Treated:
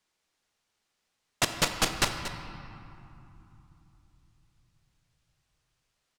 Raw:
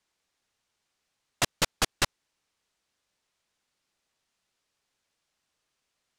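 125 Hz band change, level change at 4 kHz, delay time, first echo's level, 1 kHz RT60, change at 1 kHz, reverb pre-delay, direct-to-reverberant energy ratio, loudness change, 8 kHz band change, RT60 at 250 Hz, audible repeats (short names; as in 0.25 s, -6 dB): +2.0 dB, +1.0 dB, 0.233 s, -12.5 dB, 3.2 s, +1.5 dB, 4 ms, 5.0 dB, 0.0 dB, +0.5 dB, 4.2 s, 1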